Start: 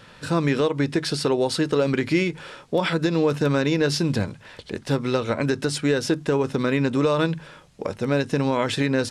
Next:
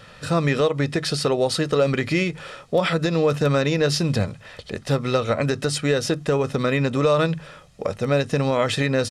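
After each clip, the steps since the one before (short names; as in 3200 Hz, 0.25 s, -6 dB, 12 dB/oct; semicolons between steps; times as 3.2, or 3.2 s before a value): comb 1.6 ms, depth 42%; gain +1.5 dB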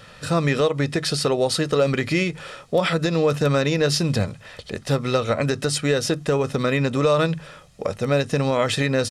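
high shelf 6100 Hz +4 dB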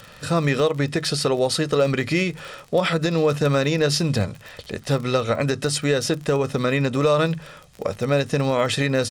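crackle 43/s -30 dBFS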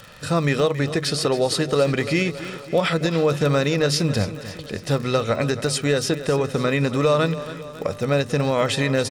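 feedback echo 0.275 s, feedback 56%, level -14 dB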